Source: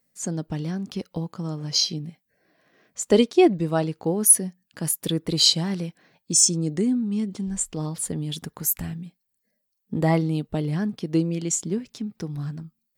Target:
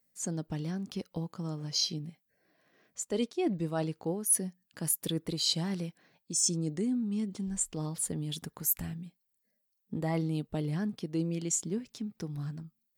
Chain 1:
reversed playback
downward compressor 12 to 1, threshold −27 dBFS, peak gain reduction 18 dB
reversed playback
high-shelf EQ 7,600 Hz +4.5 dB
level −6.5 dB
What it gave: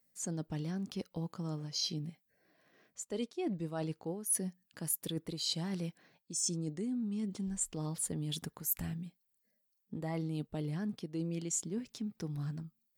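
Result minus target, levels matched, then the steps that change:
downward compressor: peak gain reduction +6.5 dB
change: downward compressor 12 to 1, threshold −20 dBFS, peak gain reduction 11.5 dB

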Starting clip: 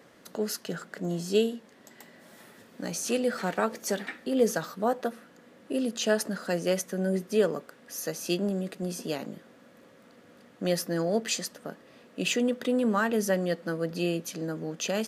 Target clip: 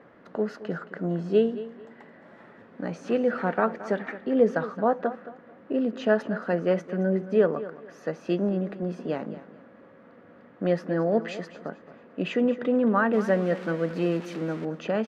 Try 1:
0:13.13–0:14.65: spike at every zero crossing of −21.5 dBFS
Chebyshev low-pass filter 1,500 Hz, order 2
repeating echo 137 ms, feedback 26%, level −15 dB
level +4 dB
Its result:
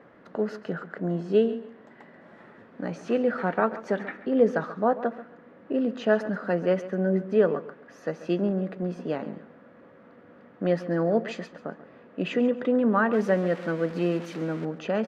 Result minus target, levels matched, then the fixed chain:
echo 84 ms early
0:13.13–0:14.65: spike at every zero crossing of −21.5 dBFS
Chebyshev low-pass filter 1,500 Hz, order 2
repeating echo 221 ms, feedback 26%, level −15 dB
level +4 dB

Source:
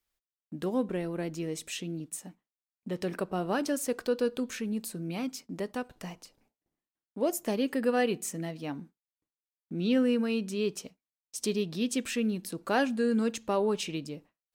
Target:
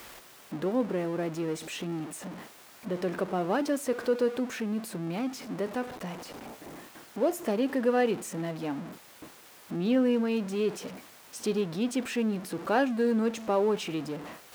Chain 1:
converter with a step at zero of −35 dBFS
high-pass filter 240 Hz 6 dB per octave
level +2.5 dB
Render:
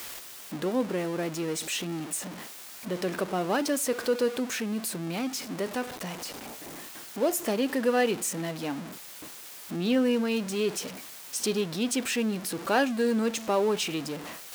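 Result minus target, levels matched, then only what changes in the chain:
4,000 Hz band +6.5 dB
add after high-pass filter: high-shelf EQ 2,500 Hz −11 dB

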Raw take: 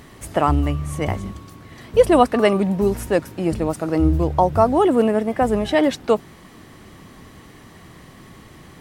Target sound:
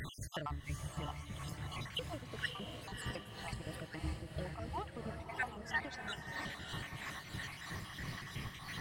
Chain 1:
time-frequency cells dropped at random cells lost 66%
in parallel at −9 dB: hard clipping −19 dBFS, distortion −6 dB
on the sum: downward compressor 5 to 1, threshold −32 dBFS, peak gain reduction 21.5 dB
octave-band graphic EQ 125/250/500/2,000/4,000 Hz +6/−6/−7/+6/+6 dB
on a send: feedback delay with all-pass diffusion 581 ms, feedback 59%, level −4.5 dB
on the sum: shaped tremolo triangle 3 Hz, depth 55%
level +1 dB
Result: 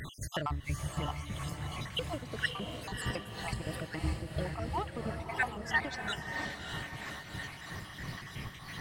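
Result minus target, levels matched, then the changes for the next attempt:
downward compressor: peak gain reduction −7 dB
change: downward compressor 5 to 1, threshold −40.5 dBFS, peak gain reduction 28.5 dB

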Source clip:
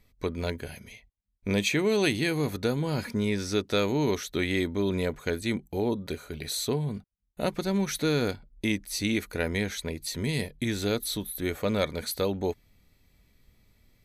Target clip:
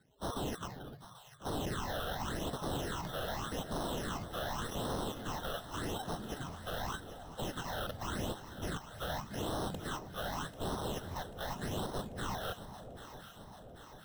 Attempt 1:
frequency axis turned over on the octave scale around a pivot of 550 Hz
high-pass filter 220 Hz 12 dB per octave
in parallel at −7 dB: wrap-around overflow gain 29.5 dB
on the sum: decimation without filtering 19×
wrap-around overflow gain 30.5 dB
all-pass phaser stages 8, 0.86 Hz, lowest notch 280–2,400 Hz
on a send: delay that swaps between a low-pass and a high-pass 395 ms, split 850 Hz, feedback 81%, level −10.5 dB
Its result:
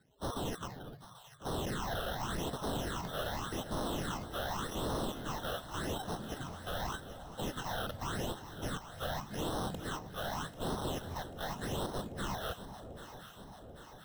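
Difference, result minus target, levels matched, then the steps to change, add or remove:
first wrap-around overflow: distortion +26 dB
change: first wrap-around overflow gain 19.5 dB

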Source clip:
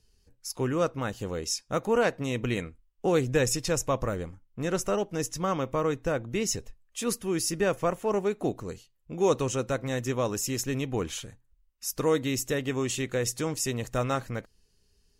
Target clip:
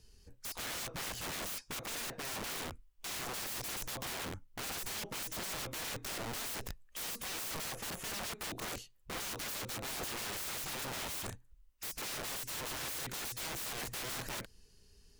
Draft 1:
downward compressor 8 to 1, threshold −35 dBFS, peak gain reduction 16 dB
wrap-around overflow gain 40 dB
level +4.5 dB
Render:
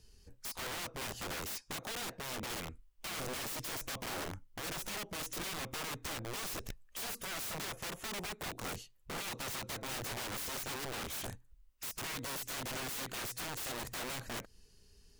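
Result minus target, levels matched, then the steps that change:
downward compressor: peak gain reduction +6 dB
change: downward compressor 8 to 1, threshold −28 dBFS, peak gain reduction 10 dB

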